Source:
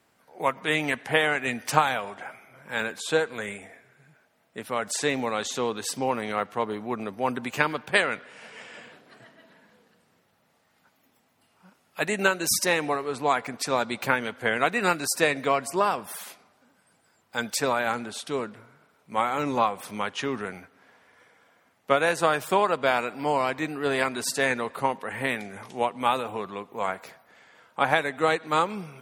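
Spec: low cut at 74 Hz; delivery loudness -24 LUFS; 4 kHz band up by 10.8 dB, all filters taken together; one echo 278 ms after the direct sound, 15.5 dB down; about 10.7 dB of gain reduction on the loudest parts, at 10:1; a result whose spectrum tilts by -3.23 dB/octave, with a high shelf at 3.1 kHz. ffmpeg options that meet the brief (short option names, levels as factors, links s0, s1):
-af "highpass=74,highshelf=f=3100:g=6,equalizer=f=4000:t=o:g=9,acompressor=threshold=0.0631:ratio=10,aecho=1:1:278:0.168,volume=1.88"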